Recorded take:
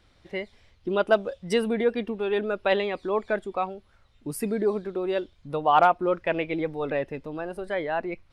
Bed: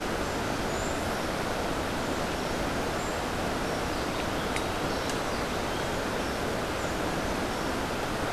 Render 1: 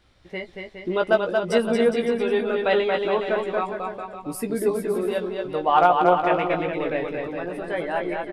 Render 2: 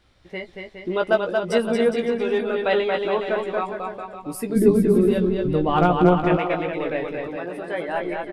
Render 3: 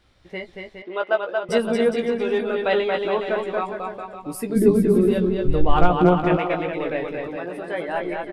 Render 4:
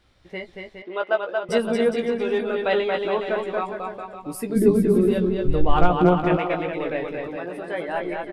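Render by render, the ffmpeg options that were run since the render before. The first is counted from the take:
-filter_complex "[0:a]asplit=2[a][b];[b]adelay=17,volume=-5.5dB[c];[a][c]amix=inputs=2:normalize=0,aecho=1:1:230|414|561.2|679|773.2:0.631|0.398|0.251|0.158|0.1"
-filter_complex "[0:a]asettb=1/sr,asplit=3[a][b][c];[a]atrim=end=1.984[d];[b]atrim=start=1.98:end=2.39,asetpts=PTS-STARTPTS,afade=t=in:d=0.004:c=qsin,afade=t=out:st=0.406:d=0.004:c=qsin,adynamicsmooth=sensitivity=6:basefreq=5.9k[e];[c]atrim=start=2.386[f];[d][e]acrossfade=d=0.004:c1=hsin:c2=qsin[g];[g][f]acrossfade=d=0.004:c1=qsin:c2=hsin,asplit=3[h][i][j];[h]afade=t=out:st=4.55:d=0.02[k];[i]asubboost=boost=10.5:cutoff=240,afade=t=in:st=4.55:d=0.02,afade=t=out:st=6.36:d=0.02[l];[j]afade=t=in:st=6.36:d=0.02[m];[k][l][m]amix=inputs=3:normalize=0,asettb=1/sr,asplit=3[n][o][p];[n]atrim=end=7.364[q];[o]atrim=start=7.36:end=7.89,asetpts=PTS-STARTPTS,afade=t=in:d=0.004:c=qsin,afade=t=out:st=0.526:d=0.004:c=qsin,highpass=f=140:p=1[r];[p]atrim=start=7.886[s];[q][r]acrossfade=d=0.004:c1=hsin:c2=qsin[t];[t][s]acrossfade=d=0.004:c1=qsin:c2=hsin"
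-filter_complex "[0:a]asettb=1/sr,asplit=3[a][b][c];[a]atrim=end=0.824[d];[b]atrim=start=0.82:end=1.49,asetpts=PTS-STARTPTS,afade=t=in:d=0.004:c=qsin,afade=t=out:st=0.666:d=0.004:c=qsin,highpass=540,lowpass=3k[e];[c]atrim=start=1.486[f];[d][e]acrossfade=d=0.004:c1=hsin:c2=qsin[g];[g][f]acrossfade=d=0.004:c1=qsin:c2=hsin,asplit=3[h][i][j];[h]afade=t=out:st=5.44:d=0.02[k];[i]asubboost=boost=11:cutoff=57,afade=t=in:st=5.44:d=0.02,afade=t=out:st=5.9:d=0.02[l];[j]afade=t=in:st=5.9:d=0.02[m];[k][l][m]amix=inputs=3:normalize=0"
-af "volume=-1dB"

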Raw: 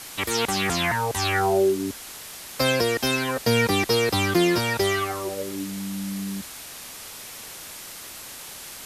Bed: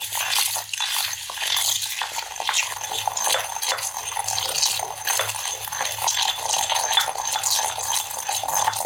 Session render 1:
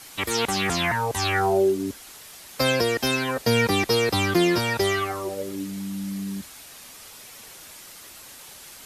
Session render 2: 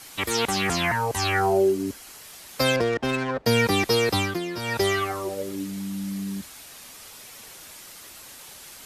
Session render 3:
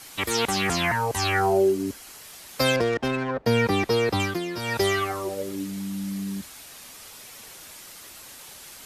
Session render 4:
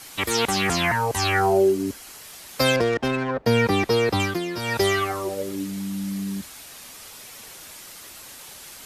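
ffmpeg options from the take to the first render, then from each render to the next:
-af "afftdn=nr=6:nf=-40"
-filter_complex "[0:a]asettb=1/sr,asplit=3[a][b][c];[a]atrim=end=0.594[d];[b]atrim=start=0.59:end=2.24,asetpts=PTS-STARTPTS,afade=t=in:d=0.004:c=qsin,afade=t=out:st=1.646:d=0.004:c=qsin,bandreject=f=3.6k:w=12[e];[c]atrim=start=2.236[f];[d][e]acrossfade=d=0.004:c1=hsin:c2=qsin[g];[g][f]acrossfade=d=0.004:c1=qsin:c2=hsin,asettb=1/sr,asplit=3[h][i][j];[h]atrim=end=2.764[k];[i]atrim=start=2.76:end=3.46,asetpts=PTS-STARTPTS,afade=t=in:d=0.004:c=qsin,afade=t=out:st=0.696:d=0.004:c=qsin,adynamicsmooth=sensitivity=1.5:basefreq=940[l];[j]atrim=start=3.456[m];[k][l]acrossfade=d=0.004:c1=hsin:c2=qsin[n];[n][m]acrossfade=d=0.004:c1=qsin:c2=hsin,asplit=3[o][p][q];[o]atrim=end=4.4,asetpts=PTS-STARTPTS,afade=t=out:st=4.16:d=0.24:silence=0.281838[r];[p]atrim=start=4.4:end=4.55,asetpts=PTS-STARTPTS,volume=-11dB[s];[q]atrim=start=4.55,asetpts=PTS-STARTPTS,afade=t=in:d=0.24:silence=0.281838[t];[r][s][t]concat=n=3:v=0:a=1"
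-filter_complex "[0:a]asettb=1/sr,asplit=3[a][b][c];[a]atrim=end=3.084[d];[b]atrim=start=3.08:end=4.2,asetpts=PTS-STARTPTS,afade=t=in:d=0.004:c=qsin,afade=t=out:st=1.116:d=0.004:c=qsin,highshelf=f=3.5k:g=-10[e];[c]atrim=start=4.196[f];[d][e]acrossfade=d=0.004:c1=hsin:c2=qsin[g];[g][f]acrossfade=d=0.004:c1=qsin:c2=hsin"
-af "volume=2dB"

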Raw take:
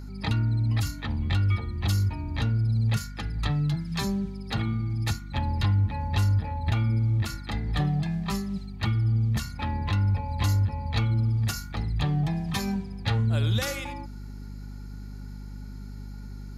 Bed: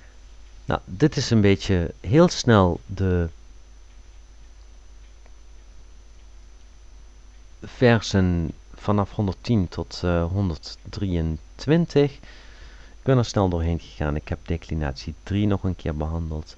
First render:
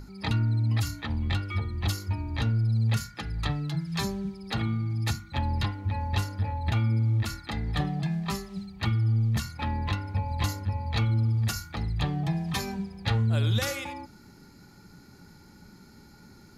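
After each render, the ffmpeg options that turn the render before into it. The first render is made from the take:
-af "bandreject=f=50:t=h:w=6,bandreject=f=100:t=h:w=6,bandreject=f=150:t=h:w=6,bandreject=f=200:t=h:w=6,bandreject=f=250:t=h:w=6"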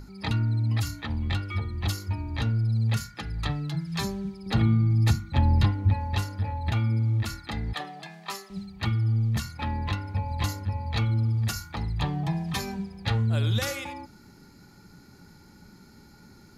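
-filter_complex "[0:a]asettb=1/sr,asplit=3[a][b][c];[a]atrim=end=4.464[d];[b]atrim=start=4.46:end=5.94,asetpts=PTS-STARTPTS,afade=t=in:d=0.004:c=qsin,afade=t=out:st=1.476:d=0.004:c=qsin,lowshelf=f=500:g=8[e];[c]atrim=start=5.936[f];[d][e]acrossfade=d=0.004:c1=hsin:c2=qsin[g];[g][f]acrossfade=d=0.004:c1=qsin:c2=hsin,asettb=1/sr,asplit=3[h][i][j];[h]atrim=end=7.734[k];[i]atrim=start=7.73:end=8.5,asetpts=PTS-STARTPTS,afade=t=in:d=0.004:c=qsin,afade=t=out:st=0.766:d=0.004:c=qsin,highpass=510[l];[j]atrim=start=8.496[m];[k][l]acrossfade=d=0.004:c1=hsin:c2=qsin[n];[n][m]acrossfade=d=0.004:c1=qsin:c2=hsin,asettb=1/sr,asplit=3[o][p][q];[o]atrim=end=11.604[r];[p]atrim=start=11.6:end=12.43,asetpts=PTS-STARTPTS,afade=t=in:d=0.004:c=qsin,afade=t=out:st=0.826:d=0.004:c=qsin,equalizer=f=950:t=o:w=0.31:g=7[s];[q]atrim=start=12.426[t];[r][s]acrossfade=d=0.004:c1=hsin:c2=qsin[u];[u][t]acrossfade=d=0.004:c1=qsin:c2=hsin"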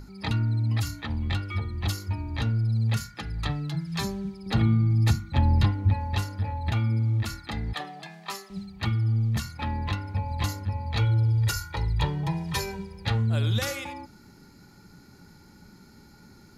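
-filter_complex "[0:a]asettb=1/sr,asplit=3[a][b][c];[a]atrim=end=10.994[d];[b]atrim=start=10.99:end=13.06,asetpts=PTS-STARTPTS,afade=t=in:d=0.004:c=qsin,afade=t=out:st=2.066:d=0.004:c=qsin,aecho=1:1:2.1:0.83,atrim=end_sample=91287[e];[c]atrim=start=13.056[f];[d][e]acrossfade=d=0.004:c1=hsin:c2=qsin[g];[g][f]acrossfade=d=0.004:c1=qsin:c2=hsin"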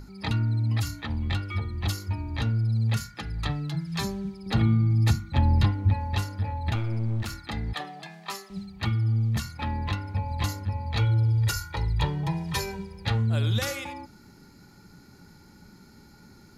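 -filter_complex "[0:a]asettb=1/sr,asplit=3[a][b][c];[a]atrim=end=6.754[d];[b]atrim=start=6.75:end=7.38,asetpts=PTS-STARTPTS,afade=t=in:d=0.004:c=qsin,afade=t=out:st=0.626:d=0.004:c=qsin,aeval=exprs='clip(val(0),-1,0.0237)':c=same[e];[c]atrim=start=7.376[f];[d][e]acrossfade=d=0.004:c1=hsin:c2=qsin[g];[g][f]acrossfade=d=0.004:c1=qsin:c2=hsin"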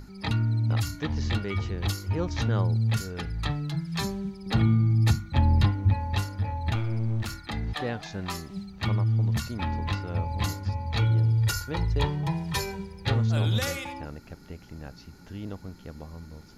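-filter_complex "[1:a]volume=-15.5dB[a];[0:a][a]amix=inputs=2:normalize=0"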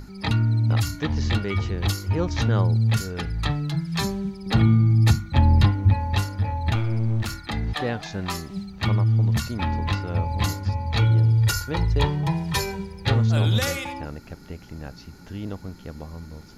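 -af "volume=4.5dB"

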